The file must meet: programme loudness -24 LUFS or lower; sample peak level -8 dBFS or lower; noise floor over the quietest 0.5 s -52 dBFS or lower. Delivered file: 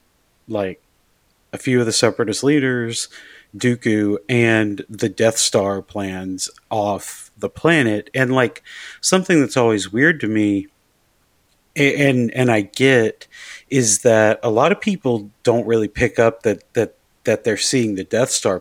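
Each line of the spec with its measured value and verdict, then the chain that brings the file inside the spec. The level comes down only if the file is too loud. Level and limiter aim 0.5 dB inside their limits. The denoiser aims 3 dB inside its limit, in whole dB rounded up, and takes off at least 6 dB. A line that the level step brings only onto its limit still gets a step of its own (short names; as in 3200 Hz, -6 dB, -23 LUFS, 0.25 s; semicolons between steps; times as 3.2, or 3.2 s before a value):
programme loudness -18.0 LUFS: fail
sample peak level -2.0 dBFS: fail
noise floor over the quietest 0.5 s -61 dBFS: OK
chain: gain -6.5 dB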